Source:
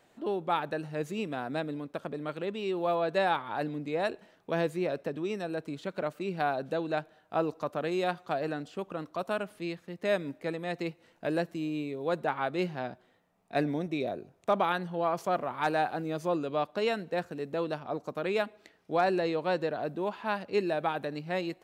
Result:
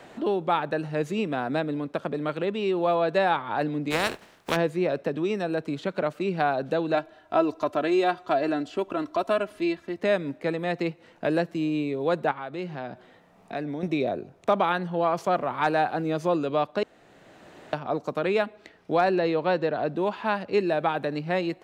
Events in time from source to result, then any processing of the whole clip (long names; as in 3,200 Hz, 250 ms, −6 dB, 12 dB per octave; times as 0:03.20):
0:03.90–0:04.55: compressing power law on the bin magnitudes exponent 0.37
0:06.94–0:10.00: comb filter 3 ms
0:12.31–0:13.83: downward compressor 2 to 1, threshold −46 dBFS
0:16.83–0:17.73: fill with room tone
0:19.09–0:19.96: low-pass filter 5,800 Hz
whole clip: high-shelf EQ 8,700 Hz −12 dB; multiband upward and downward compressor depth 40%; level +5.5 dB